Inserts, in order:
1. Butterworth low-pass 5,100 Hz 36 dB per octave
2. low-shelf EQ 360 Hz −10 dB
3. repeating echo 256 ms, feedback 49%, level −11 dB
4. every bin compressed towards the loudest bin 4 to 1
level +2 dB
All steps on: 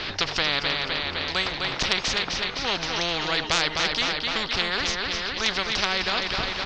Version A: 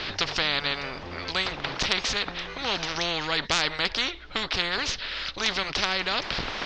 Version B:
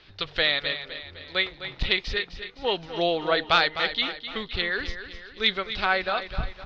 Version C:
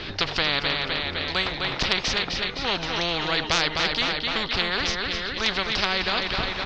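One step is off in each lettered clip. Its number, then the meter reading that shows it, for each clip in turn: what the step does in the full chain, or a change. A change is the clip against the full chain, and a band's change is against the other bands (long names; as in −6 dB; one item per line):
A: 3, change in momentary loudness spread +3 LU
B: 4, change in momentary loudness spread +9 LU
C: 2, 8 kHz band −4.0 dB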